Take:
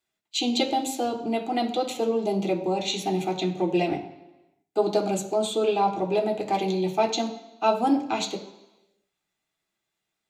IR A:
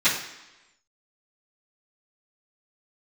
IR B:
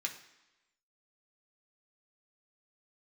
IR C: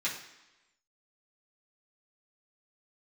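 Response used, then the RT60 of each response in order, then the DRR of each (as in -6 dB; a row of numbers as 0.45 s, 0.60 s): B; 1.0 s, 1.0 s, 1.0 s; -18.0 dB, 1.0 dB, -8.0 dB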